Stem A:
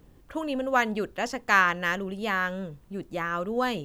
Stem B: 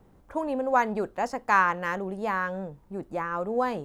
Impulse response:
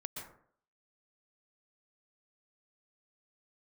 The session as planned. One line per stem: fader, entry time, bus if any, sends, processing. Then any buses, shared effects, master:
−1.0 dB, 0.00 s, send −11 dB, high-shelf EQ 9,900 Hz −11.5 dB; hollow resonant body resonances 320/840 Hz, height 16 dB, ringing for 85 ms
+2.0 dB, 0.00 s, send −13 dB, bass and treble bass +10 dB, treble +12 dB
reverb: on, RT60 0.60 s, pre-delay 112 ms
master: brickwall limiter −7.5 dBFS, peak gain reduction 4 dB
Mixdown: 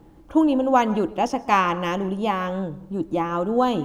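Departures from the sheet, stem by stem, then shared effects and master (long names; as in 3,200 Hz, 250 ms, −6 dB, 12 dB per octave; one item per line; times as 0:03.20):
stem B: missing bass and treble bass +10 dB, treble +12 dB
master: missing brickwall limiter −7.5 dBFS, peak gain reduction 4 dB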